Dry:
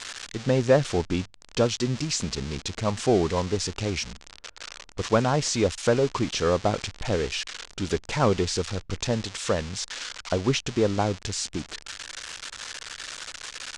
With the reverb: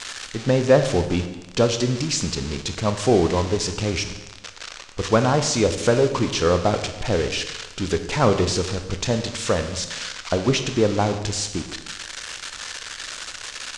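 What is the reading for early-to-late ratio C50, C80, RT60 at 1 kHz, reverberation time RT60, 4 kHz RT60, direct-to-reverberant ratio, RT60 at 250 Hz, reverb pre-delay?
9.5 dB, 11.0 dB, 1.1 s, 1.1 s, 1.1 s, 7.5 dB, 1.1 s, 20 ms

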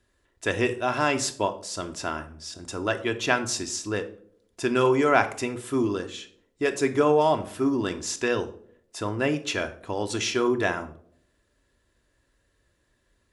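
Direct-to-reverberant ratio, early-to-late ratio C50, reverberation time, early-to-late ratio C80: 6.5 dB, 14.0 dB, 0.60 s, 18.0 dB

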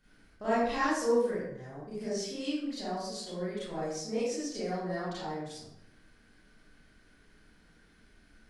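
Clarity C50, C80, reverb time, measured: −3.0 dB, 2.0 dB, 0.75 s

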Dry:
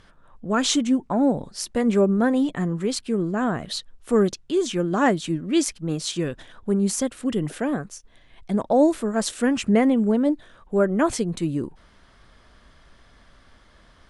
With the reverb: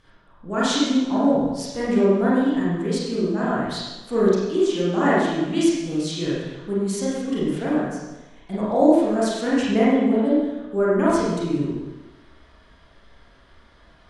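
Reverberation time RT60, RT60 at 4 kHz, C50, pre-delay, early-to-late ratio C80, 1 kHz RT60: 1.1 s, 1.0 s, −2.5 dB, 30 ms, 0.5 dB, 1.1 s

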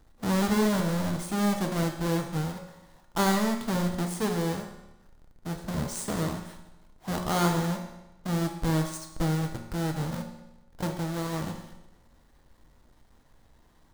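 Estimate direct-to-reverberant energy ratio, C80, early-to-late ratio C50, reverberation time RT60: 3.0 dB, 9.0 dB, 6.5 dB, 1.0 s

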